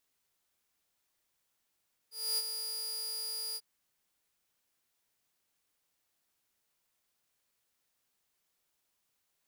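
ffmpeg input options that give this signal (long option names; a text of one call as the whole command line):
ffmpeg -f lavfi -i "aevalsrc='0.0501*(2*mod(4850*t,1)-1)':duration=1.495:sample_rate=44100,afade=type=in:duration=0.265,afade=type=out:start_time=0.265:duration=0.041:silence=0.422,afade=type=out:start_time=1.45:duration=0.045" out.wav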